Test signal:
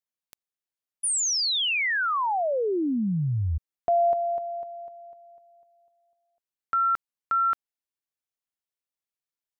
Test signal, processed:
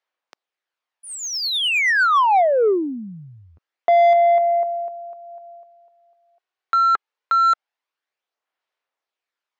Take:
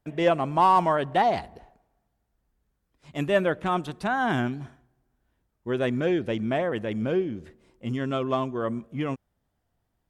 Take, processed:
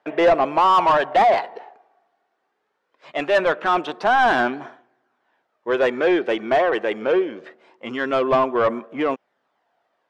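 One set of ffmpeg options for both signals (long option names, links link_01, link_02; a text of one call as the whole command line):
ffmpeg -i in.wav -filter_complex "[0:a]highpass=400,lowpass=5300,aphaser=in_gain=1:out_gain=1:delay=2.7:decay=0.32:speed=0.23:type=sinusoidal,asplit=2[link_01][link_02];[link_02]highpass=frequency=720:poles=1,volume=23dB,asoftclip=type=tanh:threshold=-6dB[link_03];[link_01][link_03]amix=inputs=2:normalize=0,lowpass=frequency=1400:poles=1,volume=-6dB" out.wav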